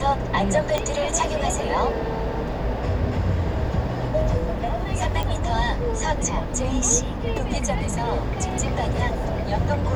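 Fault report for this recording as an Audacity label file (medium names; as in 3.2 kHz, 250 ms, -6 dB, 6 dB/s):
0.780000	0.780000	pop -9 dBFS
5.230000	5.230000	pop -13 dBFS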